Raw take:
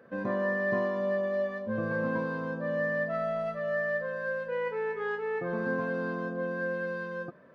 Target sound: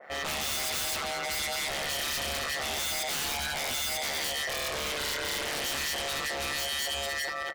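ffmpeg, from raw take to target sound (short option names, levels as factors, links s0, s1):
-filter_complex "[0:a]highpass=590,asetrate=52444,aresample=44100,atempo=0.840896,asplit=2[s0][s1];[s1]aecho=0:1:207|291.5:0.631|0.355[s2];[s0][s2]amix=inputs=2:normalize=0,aeval=exprs='0.106*(cos(1*acos(clip(val(0)/0.106,-1,1)))-cos(1*PI/2))+0.0422*(cos(7*acos(clip(val(0)/0.106,-1,1)))-cos(7*PI/2))':c=same,aeval=exprs='val(0)*sin(2*PI*72*n/s)':c=same,aeval=exprs='0.0126*(abs(mod(val(0)/0.0126+3,4)-2)-1)':c=same,adynamicequalizer=threshold=0.00112:dfrequency=2000:dqfactor=0.7:tfrequency=2000:tqfactor=0.7:attack=5:release=100:ratio=0.375:range=2:mode=boostabove:tftype=highshelf,volume=2.66"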